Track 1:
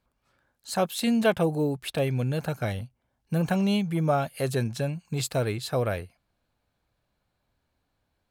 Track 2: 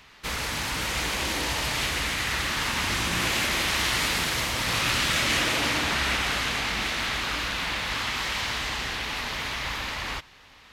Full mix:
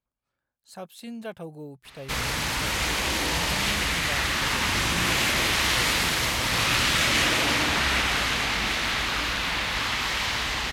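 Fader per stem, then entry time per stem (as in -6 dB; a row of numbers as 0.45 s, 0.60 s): -14.0 dB, +2.0 dB; 0.00 s, 1.85 s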